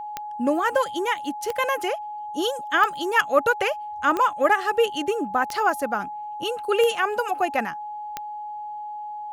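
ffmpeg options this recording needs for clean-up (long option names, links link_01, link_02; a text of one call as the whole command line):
ffmpeg -i in.wav -af "adeclick=threshold=4,bandreject=frequency=840:width=30" out.wav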